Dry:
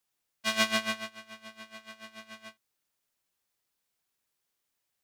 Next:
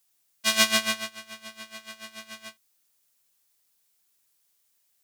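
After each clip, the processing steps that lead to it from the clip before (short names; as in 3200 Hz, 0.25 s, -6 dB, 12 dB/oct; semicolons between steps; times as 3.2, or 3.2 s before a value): high shelf 3900 Hz +11.5 dB; gain +2 dB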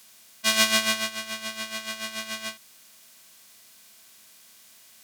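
per-bin compression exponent 0.6; gain -1 dB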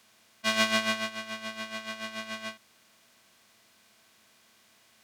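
LPF 1900 Hz 6 dB/oct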